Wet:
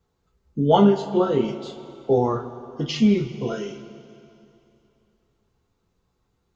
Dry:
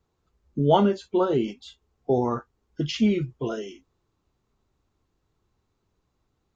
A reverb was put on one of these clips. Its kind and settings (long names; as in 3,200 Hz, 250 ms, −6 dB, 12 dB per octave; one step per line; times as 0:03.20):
coupled-rooms reverb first 0.21 s, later 2.8 s, from −18 dB, DRR 1.5 dB